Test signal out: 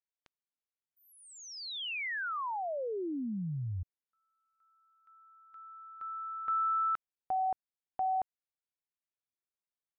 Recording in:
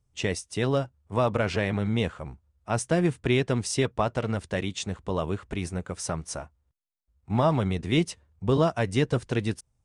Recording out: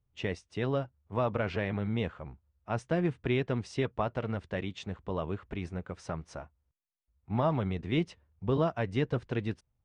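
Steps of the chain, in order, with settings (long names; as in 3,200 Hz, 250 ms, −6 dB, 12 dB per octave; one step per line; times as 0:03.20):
low-pass filter 3,200 Hz 12 dB per octave
level −5.5 dB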